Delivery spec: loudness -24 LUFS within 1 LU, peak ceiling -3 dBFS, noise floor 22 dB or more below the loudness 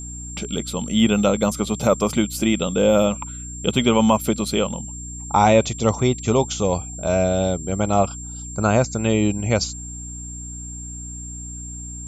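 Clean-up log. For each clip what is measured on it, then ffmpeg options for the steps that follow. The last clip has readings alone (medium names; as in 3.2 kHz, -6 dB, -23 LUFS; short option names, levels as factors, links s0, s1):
hum 60 Hz; highest harmonic 300 Hz; hum level -33 dBFS; steady tone 7.4 kHz; tone level -34 dBFS; loudness -20.5 LUFS; peak level -2.5 dBFS; loudness target -24.0 LUFS
-> -af "bandreject=f=60:t=h:w=6,bandreject=f=120:t=h:w=6,bandreject=f=180:t=h:w=6,bandreject=f=240:t=h:w=6,bandreject=f=300:t=h:w=6"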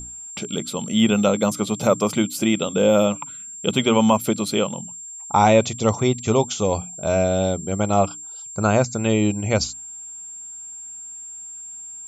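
hum not found; steady tone 7.4 kHz; tone level -34 dBFS
-> -af "bandreject=f=7400:w=30"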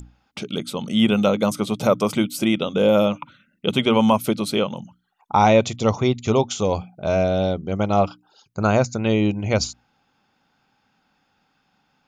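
steady tone not found; loudness -20.5 LUFS; peak level -2.5 dBFS; loudness target -24.0 LUFS
-> -af "volume=0.668"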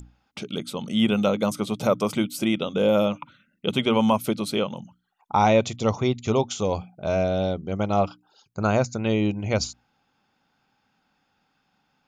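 loudness -24.5 LUFS; peak level -6.0 dBFS; noise floor -71 dBFS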